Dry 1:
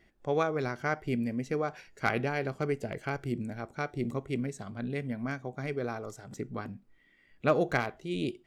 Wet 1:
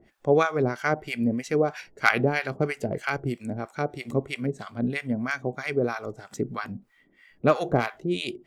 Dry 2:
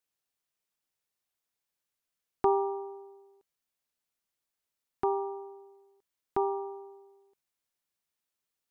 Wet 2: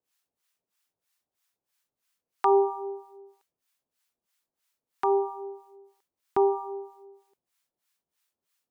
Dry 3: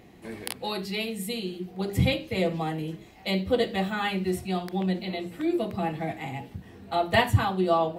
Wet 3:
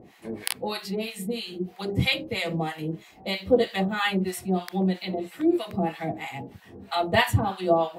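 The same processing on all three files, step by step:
harmonic tremolo 3.1 Hz, depth 100%, crossover 820 Hz; low shelf 74 Hz -10.5 dB; match loudness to -27 LUFS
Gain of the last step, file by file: +11.5, +10.5, +6.5 dB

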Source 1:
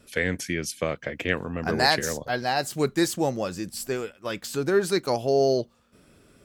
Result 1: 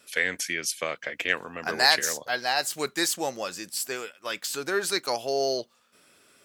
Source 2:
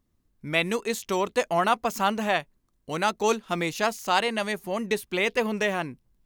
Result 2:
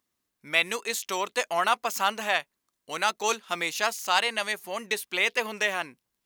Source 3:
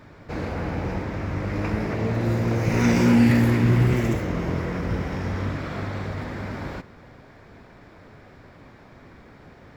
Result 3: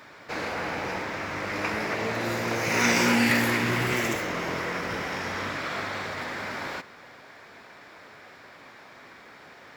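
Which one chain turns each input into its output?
HPF 1400 Hz 6 dB/oct; in parallel at -8 dB: overloaded stage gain 17 dB; on the sum: match loudness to -27 LUFS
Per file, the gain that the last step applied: +1.5, +1.0, +5.0 dB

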